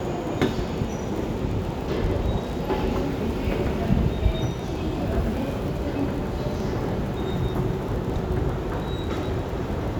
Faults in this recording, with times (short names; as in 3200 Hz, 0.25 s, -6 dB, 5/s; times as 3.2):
crackle 22/s -31 dBFS